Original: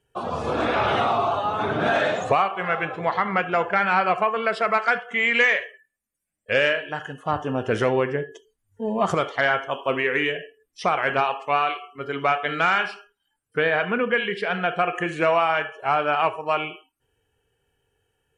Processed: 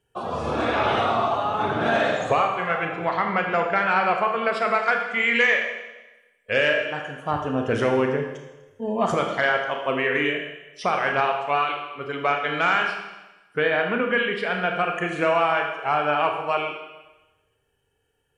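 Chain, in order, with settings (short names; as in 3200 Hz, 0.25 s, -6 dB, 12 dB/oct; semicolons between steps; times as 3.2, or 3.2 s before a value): Schroeder reverb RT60 1.1 s, combs from 27 ms, DRR 4 dB; gain -1.5 dB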